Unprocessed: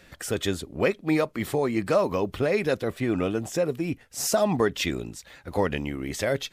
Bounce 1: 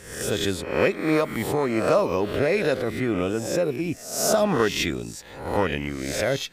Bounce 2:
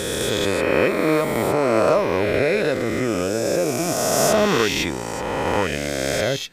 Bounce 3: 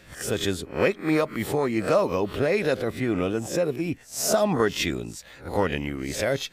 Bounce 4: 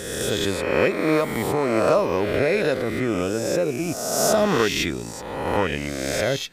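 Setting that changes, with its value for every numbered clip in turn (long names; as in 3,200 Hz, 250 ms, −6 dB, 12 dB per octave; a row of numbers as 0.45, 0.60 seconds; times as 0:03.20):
peak hold with a rise ahead of every peak, rising 60 dB in: 0.66, 3.09, 0.31, 1.44 seconds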